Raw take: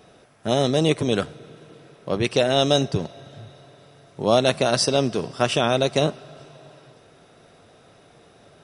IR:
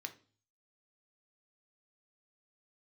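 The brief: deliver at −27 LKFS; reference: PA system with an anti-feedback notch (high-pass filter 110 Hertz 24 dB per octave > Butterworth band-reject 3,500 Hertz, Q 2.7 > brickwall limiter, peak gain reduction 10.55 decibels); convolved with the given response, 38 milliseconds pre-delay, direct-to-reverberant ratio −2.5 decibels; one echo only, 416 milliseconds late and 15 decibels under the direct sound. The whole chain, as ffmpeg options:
-filter_complex "[0:a]aecho=1:1:416:0.178,asplit=2[link_01][link_02];[1:a]atrim=start_sample=2205,adelay=38[link_03];[link_02][link_03]afir=irnorm=-1:irlink=0,volume=4.5dB[link_04];[link_01][link_04]amix=inputs=2:normalize=0,highpass=frequency=110:width=0.5412,highpass=frequency=110:width=1.3066,asuperstop=centerf=3500:order=8:qfactor=2.7,volume=-2dB,alimiter=limit=-16.5dB:level=0:latency=1"

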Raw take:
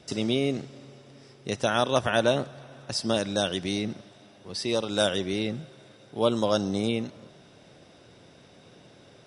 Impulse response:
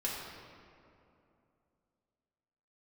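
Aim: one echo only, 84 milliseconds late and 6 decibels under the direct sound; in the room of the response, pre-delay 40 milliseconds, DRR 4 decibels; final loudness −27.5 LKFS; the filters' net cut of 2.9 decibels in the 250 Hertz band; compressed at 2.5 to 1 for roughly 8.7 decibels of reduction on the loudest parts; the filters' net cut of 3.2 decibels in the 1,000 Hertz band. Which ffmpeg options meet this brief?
-filter_complex "[0:a]equalizer=frequency=250:width_type=o:gain=-3.5,equalizer=frequency=1000:width_type=o:gain=-4.5,acompressor=threshold=-33dB:ratio=2.5,aecho=1:1:84:0.501,asplit=2[link_01][link_02];[1:a]atrim=start_sample=2205,adelay=40[link_03];[link_02][link_03]afir=irnorm=-1:irlink=0,volume=-8dB[link_04];[link_01][link_04]amix=inputs=2:normalize=0,volume=6.5dB"

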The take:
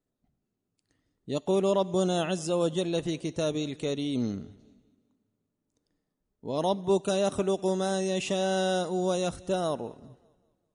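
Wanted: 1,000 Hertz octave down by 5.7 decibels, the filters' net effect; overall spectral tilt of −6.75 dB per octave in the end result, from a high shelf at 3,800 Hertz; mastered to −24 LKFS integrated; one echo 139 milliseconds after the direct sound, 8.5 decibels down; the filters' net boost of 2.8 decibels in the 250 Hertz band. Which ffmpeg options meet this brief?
ffmpeg -i in.wav -af "equalizer=frequency=250:width_type=o:gain=5,equalizer=frequency=1000:width_type=o:gain=-8.5,highshelf=frequency=3800:gain=-8.5,aecho=1:1:139:0.376,volume=4dB" out.wav

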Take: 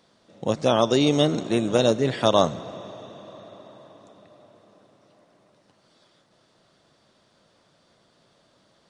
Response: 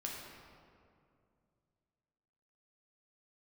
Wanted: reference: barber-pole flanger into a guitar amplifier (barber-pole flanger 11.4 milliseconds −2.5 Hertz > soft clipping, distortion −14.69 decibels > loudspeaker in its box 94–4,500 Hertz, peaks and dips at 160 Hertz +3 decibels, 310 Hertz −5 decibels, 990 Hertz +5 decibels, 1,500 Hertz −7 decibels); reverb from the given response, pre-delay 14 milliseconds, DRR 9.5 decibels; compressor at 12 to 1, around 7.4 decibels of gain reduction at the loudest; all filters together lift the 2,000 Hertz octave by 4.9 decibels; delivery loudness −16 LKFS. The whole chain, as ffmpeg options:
-filter_complex "[0:a]equalizer=frequency=2000:width_type=o:gain=9,acompressor=threshold=-20dB:ratio=12,asplit=2[link_01][link_02];[1:a]atrim=start_sample=2205,adelay=14[link_03];[link_02][link_03]afir=irnorm=-1:irlink=0,volume=-9.5dB[link_04];[link_01][link_04]amix=inputs=2:normalize=0,asplit=2[link_05][link_06];[link_06]adelay=11.4,afreqshift=-2.5[link_07];[link_05][link_07]amix=inputs=2:normalize=1,asoftclip=threshold=-21dB,highpass=94,equalizer=frequency=160:width_type=q:width=4:gain=3,equalizer=frequency=310:width_type=q:width=4:gain=-5,equalizer=frequency=990:width_type=q:width=4:gain=5,equalizer=frequency=1500:width_type=q:width=4:gain=-7,lowpass=frequency=4500:width=0.5412,lowpass=frequency=4500:width=1.3066,volume=16.5dB"

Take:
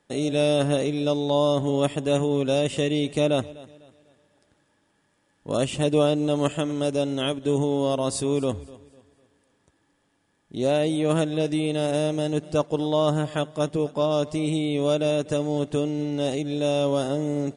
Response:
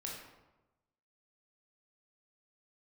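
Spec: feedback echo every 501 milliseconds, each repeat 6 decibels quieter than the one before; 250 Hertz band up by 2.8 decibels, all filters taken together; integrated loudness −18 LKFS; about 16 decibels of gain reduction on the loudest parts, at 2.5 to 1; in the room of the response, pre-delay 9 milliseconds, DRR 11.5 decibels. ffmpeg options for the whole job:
-filter_complex "[0:a]equalizer=frequency=250:width_type=o:gain=3.5,acompressor=threshold=-41dB:ratio=2.5,aecho=1:1:501|1002|1503|2004|2505|3006:0.501|0.251|0.125|0.0626|0.0313|0.0157,asplit=2[link_01][link_02];[1:a]atrim=start_sample=2205,adelay=9[link_03];[link_02][link_03]afir=irnorm=-1:irlink=0,volume=-10.5dB[link_04];[link_01][link_04]amix=inputs=2:normalize=0,volume=18.5dB"

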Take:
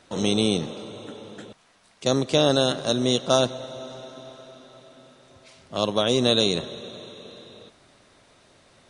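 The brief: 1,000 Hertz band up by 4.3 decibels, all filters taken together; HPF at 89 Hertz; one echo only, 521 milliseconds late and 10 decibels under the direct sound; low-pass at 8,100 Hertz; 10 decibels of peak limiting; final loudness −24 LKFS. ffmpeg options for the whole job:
ffmpeg -i in.wav -af "highpass=89,lowpass=8100,equalizer=frequency=1000:width_type=o:gain=6,alimiter=limit=-13.5dB:level=0:latency=1,aecho=1:1:521:0.316,volume=3.5dB" out.wav

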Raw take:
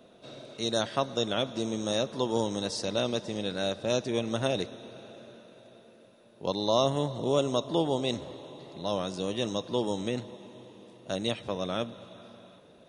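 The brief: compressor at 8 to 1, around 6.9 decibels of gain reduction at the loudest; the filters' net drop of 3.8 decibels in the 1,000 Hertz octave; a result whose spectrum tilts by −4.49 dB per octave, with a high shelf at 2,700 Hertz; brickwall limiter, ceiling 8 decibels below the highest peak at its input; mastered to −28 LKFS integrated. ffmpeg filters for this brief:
ffmpeg -i in.wav -af "equalizer=frequency=1000:width_type=o:gain=-5.5,highshelf=frequency=2700:gain=3,acompressor=threshold=-29dB:ratio=8,volume=10.5dB,alimiter=limit=-15dB:level=0:latency=1" out.wav

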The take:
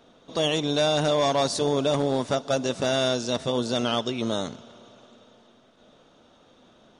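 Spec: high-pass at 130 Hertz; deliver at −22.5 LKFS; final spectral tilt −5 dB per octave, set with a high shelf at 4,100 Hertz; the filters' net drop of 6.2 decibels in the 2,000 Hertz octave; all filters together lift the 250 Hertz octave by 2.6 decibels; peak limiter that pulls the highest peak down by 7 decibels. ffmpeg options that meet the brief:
ffmpeg -i in.wav -af "highpass=130,equalizer=frequency=250:width_type=o:gain=3.5,equalizer=frequency=2000:width_type=o:gain=-8,highshelf=frequency=4100:gain=-6,volume=7dB,alimiter=limit=-12.5dB:level=0:latency=1" out.wav

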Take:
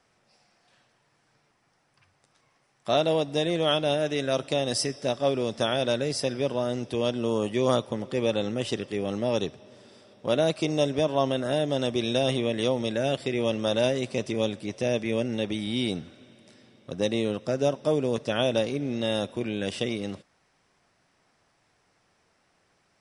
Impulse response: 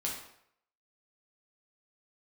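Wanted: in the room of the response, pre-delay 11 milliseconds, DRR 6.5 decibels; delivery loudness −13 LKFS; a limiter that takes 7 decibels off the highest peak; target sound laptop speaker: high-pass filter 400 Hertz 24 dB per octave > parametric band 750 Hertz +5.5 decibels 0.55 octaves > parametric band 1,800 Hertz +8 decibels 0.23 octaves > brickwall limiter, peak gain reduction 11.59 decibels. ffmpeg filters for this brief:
-filter_complex "[0:a]alimiter=limit=-16.5dB:level=0:latency=1,asplit=2[link_01][link_02];[1:a]atrim=start_sample=2205,adelay=11[link_03];[link_02][link_03]afir=irnorm=-1:irlink=0,volume=-9.5dB[link_04];[link_01][link_04]amix=inputs=2:normalize=0,highpass=frequency=400:width=0.5412,highpass=frequency=400:width=1.3066,equalizer=frequency=750:width_type=o:width=0.55:gain=5.5,equalizer=frequency=1800:width_type=o:width=0.23:gain=8,volume=21dB,alimiter=limit=-3.5dB:level=0:latency=1"

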